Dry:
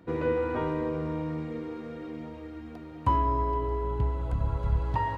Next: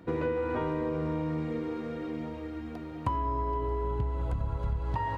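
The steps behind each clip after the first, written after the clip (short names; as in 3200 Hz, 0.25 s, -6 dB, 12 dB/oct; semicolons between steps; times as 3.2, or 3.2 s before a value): compressor, threshold -30 dBFS, peak gain reduction 10.5 dB; gain +3 dB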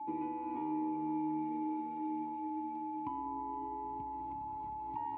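whine 860 Hz -33 dBFS; vowel filter u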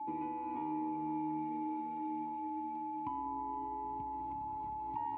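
dynamic EQ 360 Hz, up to -5 dB, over -49 dBFS, Q 2; gain +1 dB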